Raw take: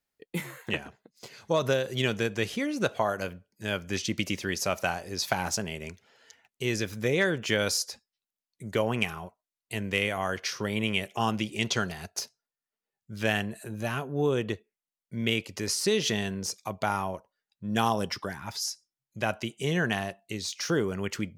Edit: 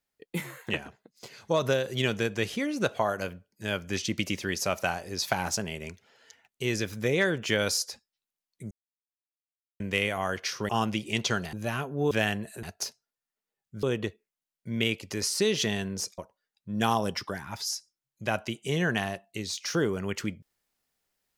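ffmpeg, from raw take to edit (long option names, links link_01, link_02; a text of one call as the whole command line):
ffmpeg -i in.wav -filter_complex "[0:a]asplit=9[link_01][link_02][link_03][link_04][link_05][link_06][link_07][link_08][link_09];[link_01]atrim=end=8.71,asetpts=PTS-STARTPTS,afade=type=out:start_time=8.706:duration=0.004:curve=hsin[link_10];[link_02]atrim=start=8.71:end=9.8,asetpts=PTS-STARTPTS,volume=0[link_11];[link_03]atrim=start=9.8:end=10.692,asetpts=PTS-STARTPTS,afade=type=in:duration=0.004:curve=hsin[link_12];[link_04]atrim=start=11.148:end=11.992[link_13];[link_05]atrim=start=13.708:end=14.292[link_14];[link_06]atrim=start=13.188:end=13.712[link_15];[link_07]atrim=start=11.988:end=13.192[link_16];[link_08]atrim=start=14.288:end=16.642[link_17];[link_09]atrim=start=17.128[link_18];[link_10][link_11][link_12]concat=n=3:v=0:a=1[link_19];[link_19][link_13]acrossfade=duration=0.004:curve1=hsin:curve2=hsin[link_20];[link_20][link_14]acrossfade=duration=0.004:curve1=hsin:curve2=hsin[link_21];[link_21][link_15]acrossfade=duration=0.004:curve1=hsin:curve2=hsin[link_22];[link_22][link_16]acrossfade=duration=0.004:curve1=hsin:curve2=hsin[link_23];[link_23][link_17]acrossfade=duration=0.004:curve1=hsin:curve2=hsin[link_24];[link_24][link_18]acrossfade=duration=0.004:curve1=hsin:curve2=hsin" out.wav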